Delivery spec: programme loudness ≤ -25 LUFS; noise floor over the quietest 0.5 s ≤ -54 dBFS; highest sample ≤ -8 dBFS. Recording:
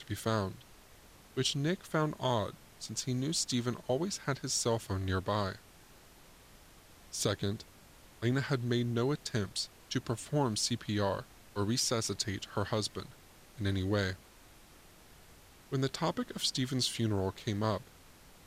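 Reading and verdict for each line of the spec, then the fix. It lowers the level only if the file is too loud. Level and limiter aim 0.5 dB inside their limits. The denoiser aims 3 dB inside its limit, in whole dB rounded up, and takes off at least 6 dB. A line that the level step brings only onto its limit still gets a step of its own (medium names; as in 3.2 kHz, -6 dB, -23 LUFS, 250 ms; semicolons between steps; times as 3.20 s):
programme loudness -34.0 LUFS: pass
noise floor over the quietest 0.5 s -57 dBFS: pass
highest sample -19.0 dBFS: pass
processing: none needed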